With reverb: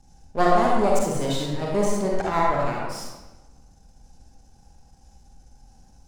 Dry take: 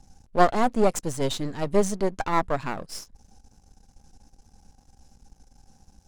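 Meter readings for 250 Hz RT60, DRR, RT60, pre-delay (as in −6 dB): 1.2 s, −3.5 dB, 1.1 s, 39 ms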